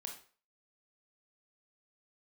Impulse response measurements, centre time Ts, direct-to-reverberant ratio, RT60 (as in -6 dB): 22 ms, 1.5 dB, 0.40 s